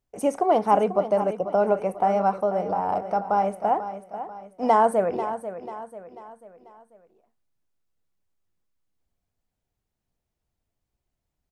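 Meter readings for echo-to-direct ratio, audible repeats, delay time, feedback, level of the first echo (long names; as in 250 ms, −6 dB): −10.5 dB, 4, 491 ms, 44%, −11.5 dB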